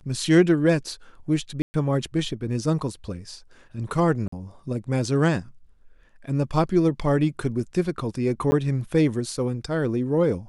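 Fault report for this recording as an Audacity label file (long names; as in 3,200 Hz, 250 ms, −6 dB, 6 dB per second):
1.620000	1.740000	drop-out 120 ms
4.280000	4.320000	drop-out 44 ms
8.510000	8.520000	drop-out 10 ms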